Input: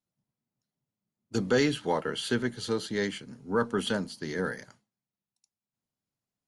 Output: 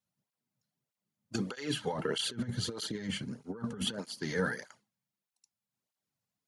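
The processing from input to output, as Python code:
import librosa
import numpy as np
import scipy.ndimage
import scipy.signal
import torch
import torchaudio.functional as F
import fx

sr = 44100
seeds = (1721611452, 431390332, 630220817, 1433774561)

y = fx.low_shelf(x, sr, hz=370.0, db=10.0, at=(1.93, 3.99))
y = fx.over_compress(y, sr, threshold_db=-28.0, ratio=-0.5)
y = fx.peak_eq(y, sr, hz=270.0, db=-5.0, octaves=1.4)
y = fx.flanger_cancel(y, sr, hz=1.6, depth_ms=3.2)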